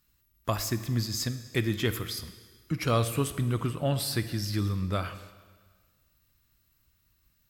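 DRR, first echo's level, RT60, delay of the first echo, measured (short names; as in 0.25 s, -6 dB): 11.0 dB, none, 1.6 s, none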